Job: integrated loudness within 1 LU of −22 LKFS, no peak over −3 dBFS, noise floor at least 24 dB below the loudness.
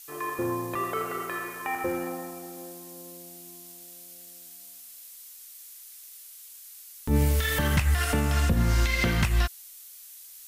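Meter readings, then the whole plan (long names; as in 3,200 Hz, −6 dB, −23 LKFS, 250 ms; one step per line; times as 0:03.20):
number of dropouts 1; longest dropout 3.1 ms; background noise floor −47 dBFS; target noise floor −51 dBFS; integrated loudness −27.0 LKFS; sample peak −13.5 dBFS; target loudness −22.0 LKFS
→ repair the gap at 0:00.75, 3.1 ms
noise reduction from a noise print 6 dB
level +5 dB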